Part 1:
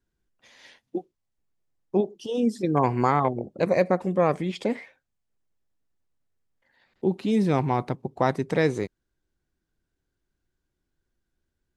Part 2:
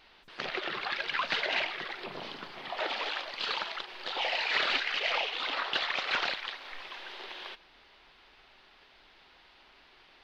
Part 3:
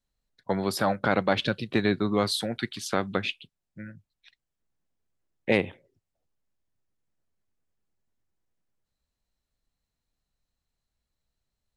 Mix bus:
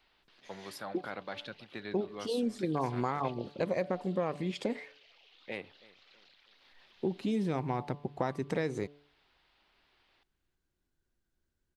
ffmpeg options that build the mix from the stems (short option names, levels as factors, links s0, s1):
-filter_complex "[0:a]volume=0.708[s0];[1:a]acompressor=threshold=0.00631:ratio=2,alimiter=level_in=4.47:limit=0.0631:level=0:latency=1:release=54,volume=0.224,acrossover=split=310|3000[s1][s2][s3];[s2]acompressor=threshold=0.00126:ratio=6[s4];[s1][s4][s3]amix=inputs=3:normalize=0,volume=0.282,asplit=2[s5][s6];[s6]volume=0.0841[s7];[2:a]lowshelf=f=370:g=-8.5,volume=0.188,asplit=2[s8][s9];[s9]volume=0.0841[s10];[s0][s8]amix=inputs=2:normalize=0,bandreject=f=144.8:t=h:w=4,bandreject=f=289.6:t=h:w=4,bandreject=f=434.4:t=h:w=4,bandreject=f=579.2:t=h:w=4,bandreject=f=724:t=h:w=4,bandreject=f=868.8:t=h:w=4,bandreject=f=1013.6:t=h:w=4,bandreject=f=1158.4:t=h:w=4,acompressor=threshold=0.0355:ratio=4,volume=1[s11];[s7][s10]amix=inputs=2:normalize=0,aecho=0:1:322|644|966|1288|1610|1932:1|0.4|0.16|0.064|0.0256|0.0102[s12];[s5][s11][s12]amix=inputs=3:normalize=0"